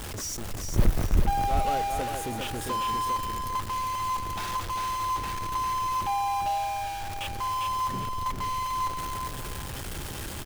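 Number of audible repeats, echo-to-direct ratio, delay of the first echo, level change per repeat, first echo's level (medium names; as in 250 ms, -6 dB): 2, -4.5 dB, 400 ms, -11.0 dB, -5.0 dB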